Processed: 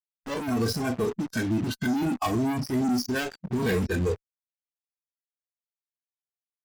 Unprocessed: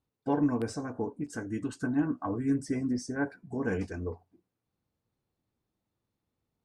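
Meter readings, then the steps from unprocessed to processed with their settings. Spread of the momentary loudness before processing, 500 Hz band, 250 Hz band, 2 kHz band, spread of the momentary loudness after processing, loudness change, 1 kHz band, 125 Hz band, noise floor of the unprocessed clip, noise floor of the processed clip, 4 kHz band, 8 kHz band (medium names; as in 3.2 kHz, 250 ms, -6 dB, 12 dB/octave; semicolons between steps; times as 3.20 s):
8 LU, +5.5 dB, +3.5 dB, +7.0 dB, 4 LU, +4.5 dB, +6.0 dB, +7.0 dB, under -85 dBFS, under -85 dBFS, +15.5 dB, +8.0 dB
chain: FFT filter 100 Hz 0 dB, 210 Hz +2 dB, 5.1 kHz +2 dB, 7.6 kHz -26 dB; fuzz box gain 50 dB, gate -45 dBFS; spectral noise reduction 12 dB; trim -8.5 dB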